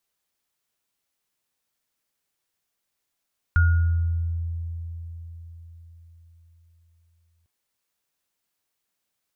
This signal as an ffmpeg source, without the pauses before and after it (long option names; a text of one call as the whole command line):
ffmpeg -f lavfi -i "aevalsrc='0.2*pow(10,-3*t/4.62)*sin(2*PI*83.8*t)+0.0891*pow(10,-3*t/0.88)*sin(2*PI*1430*t)':duration=3.9:sample_rate=44100" out.wav